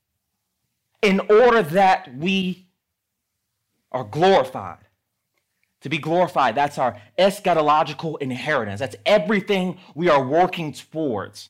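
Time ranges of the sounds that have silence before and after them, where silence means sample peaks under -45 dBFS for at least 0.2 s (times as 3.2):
1.03–2.62
3.92–4.84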